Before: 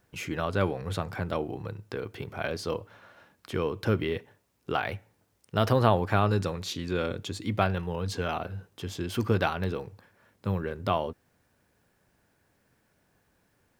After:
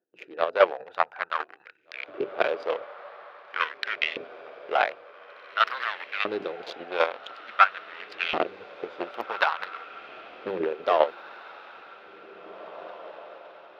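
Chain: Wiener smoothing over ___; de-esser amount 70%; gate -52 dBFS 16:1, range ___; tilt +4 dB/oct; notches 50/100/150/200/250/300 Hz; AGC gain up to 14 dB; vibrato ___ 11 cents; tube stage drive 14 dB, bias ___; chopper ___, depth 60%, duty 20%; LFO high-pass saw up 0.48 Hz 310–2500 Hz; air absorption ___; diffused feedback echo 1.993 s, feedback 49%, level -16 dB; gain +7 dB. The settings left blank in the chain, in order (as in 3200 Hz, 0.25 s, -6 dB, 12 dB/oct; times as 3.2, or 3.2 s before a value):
41 samples, -8 dB, 15 Hz, 0.75, 5 Hz, 320 m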